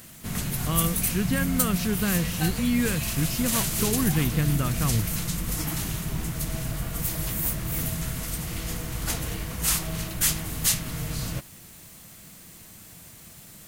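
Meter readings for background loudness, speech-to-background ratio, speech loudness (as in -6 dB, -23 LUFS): -27.5 LUFS, -0.5 dB, -28.0 LUFS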